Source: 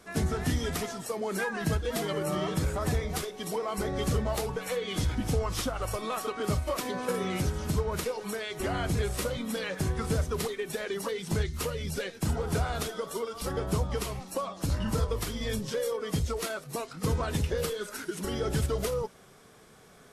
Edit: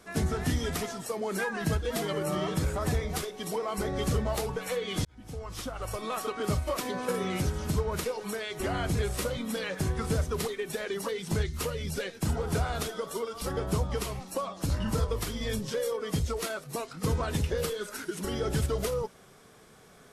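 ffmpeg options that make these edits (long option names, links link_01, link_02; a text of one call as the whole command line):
ffmpeg -i in.wav -filter_complex "[0:a]asplit=2[link_01][link_02];[link_01]atrim=end=5.05,asetpts=PTS-STARTPTS,afade=type=out:start_time=5.046:duration=0.004:curve=hsin[link_03];[link_02]atrim=start=5.05,asetpts=PTS-STARTPTS,afade=type=in:duration=1.15[link_04];[link_03][link_04]concat=n=2:v=0:a=1" out.wav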